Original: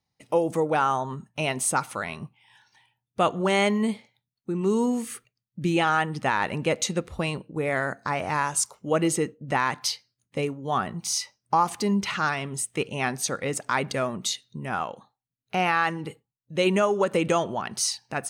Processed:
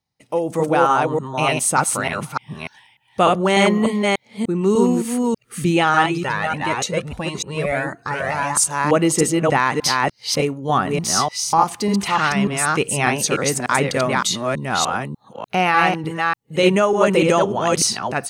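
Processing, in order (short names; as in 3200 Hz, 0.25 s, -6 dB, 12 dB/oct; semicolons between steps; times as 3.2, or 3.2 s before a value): reverse delay 0.297 s, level -2 dB; AGC gain up to 7.5 dB; 6.06–8.57 cascading flanger rising 1.6 Hz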